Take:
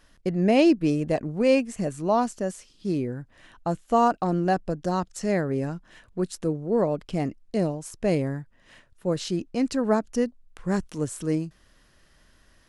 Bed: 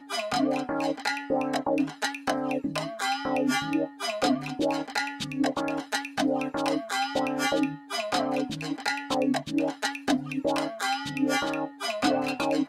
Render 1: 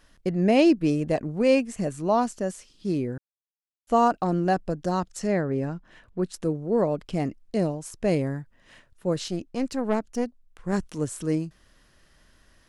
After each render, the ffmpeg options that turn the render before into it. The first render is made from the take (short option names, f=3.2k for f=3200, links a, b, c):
-filter_complex "[0:a]asettb=1/sr,asplit=3[a][b][c];[a]atrim=end=5.274[d];[b]atrim=start=5.27:end=6.34,asetpts=PTS-STARTPTS,afade=t=in:d=0.004:c=qsin,afade=t=out:st=1.066:d=0.004:c=qsin,lowpass=f=3.1k:p=1[e];[c]atrim=start=6.336[f];[d][e]acrossfade=d=0.004:c1=hsin:c2=qsin[g];[g][f]acrossfade=d=0.004:c1=qsin:c2=hsin,asettb=1/sr,asplit=3[h][i][j];[h]atrim=end=9.274[k];[i]atrim=start=9.27:end=10.73,asetpts=PTS-STARTPTS,afade=t=in:d=0.004:c=qsin,afade=t=out:st=1.456:d=0.004:c=qsin,aeval=exprs='(tanh(6.31*val(0)+0.7)-tanh(0.7))/6.31':c=same[l];[j]atrim=start=10.726[m];[k][l]acrossfade=d=0.004:c1=hsin:c2=qsin[n];[n][m]acrossfade=d=0.004:c1=qsin:c2=hsin,asplit=3[o][p][q];[o]atrim=end=3.18,asetpts=PTS-STARTPTS,afade=t=out:st=3.176:d=0.004:c=hsin[r];[p]atrim=start=3.18:end=3.87,asetpts=PTS-STARTPTS,volume=0[s];[q]atrim=start=3.87,asetpts=PTS-STARTPTS,afade=t=in:d=0.004:c=hsin[t];[r][s][t]concat=n=3:v=0:a=1"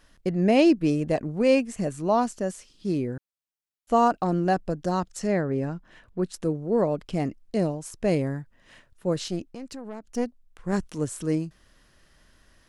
-filter_complex "[0:a]asettb=1/sr,asplit=3[a][b][c];[a]atrim=end=9.444[d];[b]atrim=start=9.44:end=10.1,asetpts=PTS-STARTPTS,afade=t=in:d=0.004:c=qsin,afade=t=out:st=0.656:d=0.004:c=qsin,acompressor=threshold=-37dB:ratio=3:attack=3.2:release=140:knee=1:detection=peak[e];[c]atrim=start=10.096[f];[d][e]acrossfade=d=0.004:c1=hsin:c2=qsin[g];[g][f]acrossfade=d=0.004:c1=qsin:c2=hsin"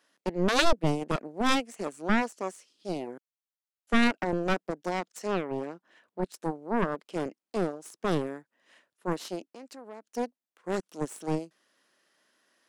-filter_complex "[0:a]aeval=exprs='0.447*(cos(1*acos(clip(val(0)/0.447,-1,1)))-cos(1*PI/2))+0.2*(cos(3*acos(clip(val(0)/0.447,-1,1)))-cos(3*PI/2))+0.0794*(cos(6*acos(clip(val(0)/0.447,-1,1)))-cos(6*PI/2))+0.00631*(cos(7*acos(clip(val(0)/0.447,-1,1)))-cos(7*PI/2))':c=same,acrossover=split=240|1600[a][b][c];[a]acrusher=bits=3:mix=0:aa=0.5[d];[d][b][c]amix=inputs=3:normalize=0"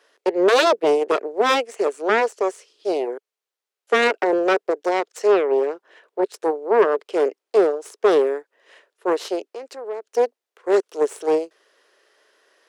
-filter_complex "[0:a]asplit=2[a][b];[b]highpass=f=720:p=1,volume=15dB,asoftclip=type=tanh:threshold=-7.5dB[c];[a][c]amix=inputs=2:normalize=0,lowpass=f=4.9k:p=1,volume=-6dB,highpass=f=420:t=q:w=4.9"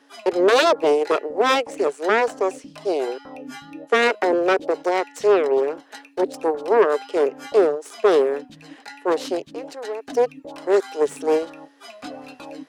-filter_complex "[1:a]volume=-11dB[a];[0:a][a]amix=inputs=2:normalize=0"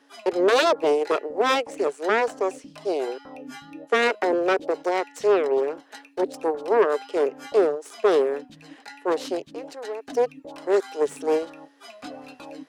-af "volume=-3dB"